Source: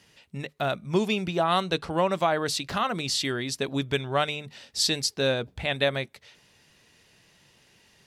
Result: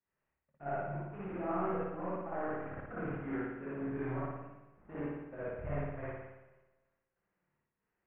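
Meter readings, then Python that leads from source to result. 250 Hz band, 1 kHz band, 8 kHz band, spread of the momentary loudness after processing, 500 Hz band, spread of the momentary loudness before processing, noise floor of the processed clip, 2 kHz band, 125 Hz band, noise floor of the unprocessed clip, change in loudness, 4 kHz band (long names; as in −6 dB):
−9.0 dB, −12.5 dB, below −40 dB, 10 LU, −12.0 dB, 10 LU, below −85 dBFS, −15.5 dB, −9.0 dB, −62 dBFS, −13.0 dB, below −40 dB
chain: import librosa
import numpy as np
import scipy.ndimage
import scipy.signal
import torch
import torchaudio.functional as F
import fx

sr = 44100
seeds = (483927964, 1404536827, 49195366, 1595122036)

y = fx.cvsd(x, sr, bps=16000)
y = scipy.signal.sosfilt(scipy.signal.butter(4, 1800.0, 'lowpass', fs=sr, output='sos'), y)
y = fx.level_steps(y, sr, step_db=18)
y = fx.chorus_voices(y, sr, voices=6, hz=0.49, base_ms=24, depth_ms=3.2, mix_pct=50)
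y = fx.step_gate(y, sr, bpm=93, pattern='xx.xxx.xxxx.x.x', floor_db=-60.0, edge_ms=4.5)
y = fx.echo_feedback(y, sr, ms=245, feedback_pct=46, wet_db=-19)
y = fx.rev_spring(y, sr, rt60_s=1.3, pass_ms=(55,), chirp_ms=50, drr_db=-7.0)
y = fx.band_widen(y, sr, depth_pct=40)
y = F.gain(torch.from_numpy(y), -4.5).numpy()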